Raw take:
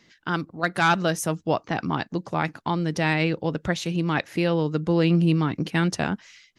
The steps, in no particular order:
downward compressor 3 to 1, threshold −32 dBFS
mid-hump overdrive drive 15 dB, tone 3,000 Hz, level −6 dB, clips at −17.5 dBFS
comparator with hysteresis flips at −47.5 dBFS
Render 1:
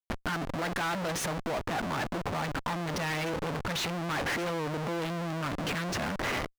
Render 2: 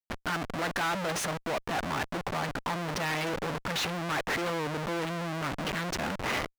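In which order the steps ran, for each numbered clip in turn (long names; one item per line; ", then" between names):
comparator with hysteresis, then mid-hump overdrive, then downward compressor
downward compressor, then comparator with hysteresis, then mid-hump overdrive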